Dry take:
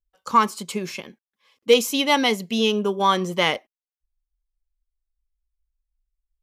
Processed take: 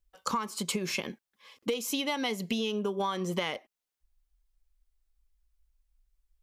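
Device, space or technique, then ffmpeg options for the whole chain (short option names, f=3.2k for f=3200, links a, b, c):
serial compression, peaks first: -af "acompressor=threshold=-29dB:ratio=5,acompressor=threshold=-36dB:ratio=3,volume=6.5dB"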